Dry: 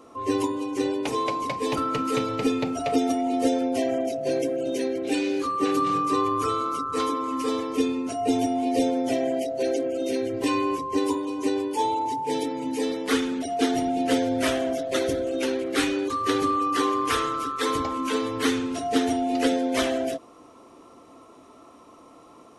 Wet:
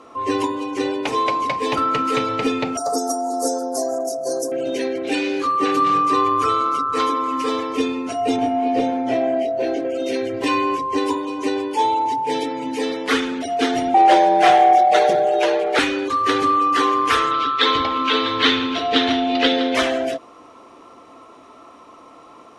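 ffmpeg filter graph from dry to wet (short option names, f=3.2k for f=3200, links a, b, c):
-filter_complex "[0:a]asettb=1/sr,asplit=3[a][b][c];[a]atrim=end=2.774[d];[b]atrim=start=2.77:end=4.52,asetpts=PTS-STARTPTS,afade=t=in:d=0.004:c=qsin,afade=t=out:st=1.746:d=0.004:c=qsin,asuperstop=centerf=2600:order=8:qfactor=0.69,aemphasis=mode=production:type=riaa[e];[c]atrim=start=4.516[f];[d][e]acrossfade=d=0.004:c1=hsin:c2=qsin[g];[g][f]acrossfade=d=0.004:c1=qsin:c2=hsin,asettb=1/sr,asplit=3[h][i][j];[h]atrim=end=8.364[k];[i]atrim=start=8.36:end=9.85,asetpts=PTS-STARTPTS,afade=t=in:d=0.004:c=qsin,afade=t=out:st=1.486:d=0.004:c=qsin,lowpass=f=1.7k:p=1,asplit=2[l][m];[m]adelay=24,volume=-3dB[n];[l][n]amix=inputs=2:normalize=0,atrim=end_sample=65709[o];[j]atrim=start=9.846[p];[k][o]acrossfade=d=0.004:c1=hsin:c2=qsin[q];[q][p]acrossfade=d=0.004:c1=qsin:c2=hsin,asettb=1/sr,asplit=3[r][s][t];[r]atrim=end=13.944[u];[s]atrim=start=13.94:end=15.79,asetpts=PTS-STARTPTS,afade=t=in:d=0.004:c=qsin,afade=t=out:st=1.846:d=0.004:c=qsin,acrossover=split=9100[v][w];[w]acompressor=threshold=-49dB:ratio=4:attack=1:release=60[x];[v][x]amix=inputs=2:normalize=0,equalizer=f=680:t=o:w=0.63:g=12,afreqshift=78[y];[t]atrim=start=15.786[z];[u][y]acrossfade=d=0.004:c1=hsin:c2=qsin[aa];[aa][z]acrossfade=d=0.004:c1=qsin:c2=hsin,asettb=1/sr,asplit=3[ab][ac][ad];[ab]atrim=end=17.314[ae];[ac]atrim=start=17.31:end=19.75,asetpts=PTS-STARTPTS,afade=t=in:d=0.004:c=qsin,afade=t=out:st=2.436:d=0.004:c=qsin,lowpass=f=3.7k:t=q:w=3.2,aecho=1:1:164|648:0.126|0.251,atrim=end_sample=107604[af];[ad]atrim=start=19.746[ag];[ae][af]acrossfade=d=0.004:c1=hsin:c2=qsin[ah];[ah][ag]acrossfade=d=0.004:c1=qsin:c2=hsin,aemphasis=mode=reproduction:type=75fm,acontrast=51,tiltshelf=f=770:g=-6"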